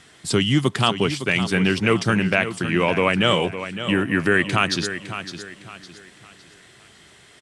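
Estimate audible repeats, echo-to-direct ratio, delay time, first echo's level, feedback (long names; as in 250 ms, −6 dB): 3, −10.5 dB, 559 ms, −11.0 dB, 34%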